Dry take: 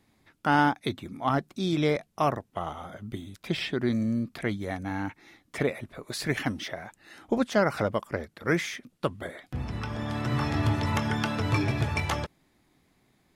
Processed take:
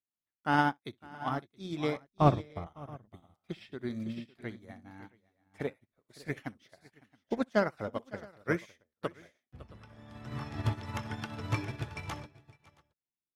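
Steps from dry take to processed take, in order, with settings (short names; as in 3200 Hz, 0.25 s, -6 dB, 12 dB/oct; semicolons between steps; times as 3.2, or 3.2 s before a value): 2.06–2.67 RIAA curve playback; tapped delay 63/557/672 ms -14/-9.5/-10.5 dB; upward expander 2.5:1, over -45 dBFS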